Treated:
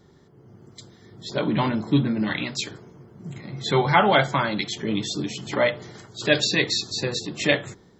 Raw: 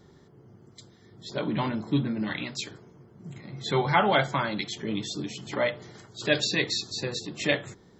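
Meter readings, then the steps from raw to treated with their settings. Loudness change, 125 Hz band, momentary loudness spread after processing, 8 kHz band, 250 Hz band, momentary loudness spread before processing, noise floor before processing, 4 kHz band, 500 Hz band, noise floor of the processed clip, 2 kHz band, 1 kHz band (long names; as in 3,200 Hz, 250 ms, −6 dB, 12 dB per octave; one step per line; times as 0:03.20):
+5.0 dB, +5.0 dB, 16 LU, can't be measured, +5.0 dB, 17 LU, −56 dBFS, +5.0 dB, +5.0 dB, −54 dBFS, +4.5 dB, +4.5 dB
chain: automatic gain control gain up to 5.5 dB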